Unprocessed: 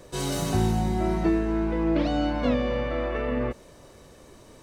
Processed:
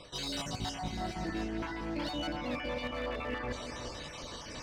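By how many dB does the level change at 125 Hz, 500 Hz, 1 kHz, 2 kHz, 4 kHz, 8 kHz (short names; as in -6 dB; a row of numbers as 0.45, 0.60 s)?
-13.5 dB, -11.5 dB, -7.5 dB, -3.5 dB, -0.5 dB, n/a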